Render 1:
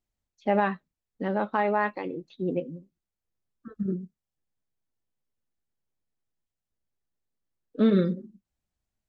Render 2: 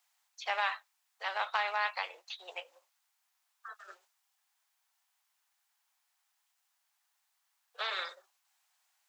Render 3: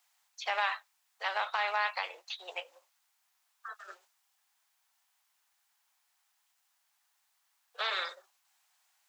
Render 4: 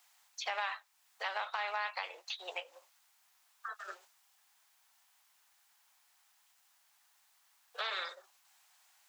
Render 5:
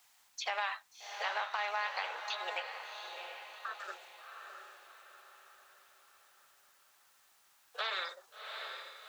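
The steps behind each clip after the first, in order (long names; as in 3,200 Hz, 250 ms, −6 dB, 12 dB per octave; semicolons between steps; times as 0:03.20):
Butterworth high-pass 760 Hz 48 dB per octave; every bin compressed towards the loudest bin 2 to 1; level −1.5 dB
brickwall limiter −23.5 dBFS, peak gain reduction 6 dB; level +3 dB
downward compressor 2 to 1, threshold −48 dBFS, peak gain reduction 12 dB; level +5.5 dB
surface crackle 170 per second −62 dBFS; feedback delay with all-pass diffusion 722 ms, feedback 46%, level −6 dB; level +1 dB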